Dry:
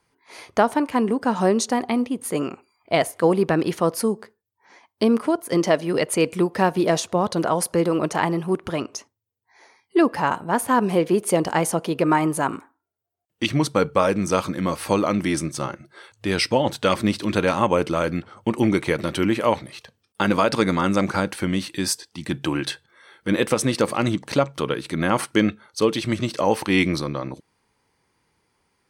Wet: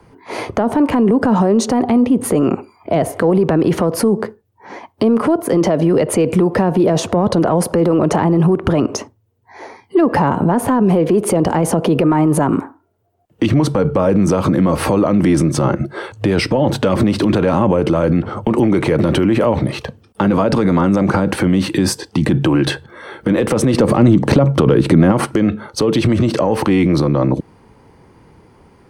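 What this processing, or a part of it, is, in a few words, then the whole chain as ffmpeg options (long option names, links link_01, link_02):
mastering chain: -filter_complex "[0:a]equalizer=frequency=2900:width_type=o:width=0.23:gain=2.5,acrossover=split=160|460[link_01][link_02][link_03];[link_01]acompressor=threshold=-33dB:ratio=4[link_04];[link_02]acompressor=threshold=-26dB:ratio=4[link_05];[link_03]acompressor=threshold=-21dB:ratio=4[link_06];[link_04][link_05][link_06]amix=inputs=3:normalize=0,acompressor=threshold=-27dB:ratio=2,asoftclip=type=tanh:threshold=-15.5dB,tiltshelf=frequency=1300:gain=9.5,alimiter=level_in=22dB:limit=-1dB:release=50:level=0:latency=1,asettb=1/sr,asplit=3[link_07][link_08][link_09];[link_07]atrim=end=23.744[link_10];[link_08]atrim=start=23.74:end=25.12,asetpts=PTS-STARTPTS,afade=type=in:duration=0.004:curve=qsin,afade=type=out:start_time=1.376:duration=0.004:curve=qsin,lowshelf=frequency=470:gain=5.5[link_11];[link_09]atrim=start=25.116[link_12];[link_10][link_11]acrossfade=duration=0.004:curve1=hsin:curve2=qsin[link_13];[link_13][link_12]acrossfade=duration=0.004:curve1=qsin:curve2=hsin,volume=-5dB"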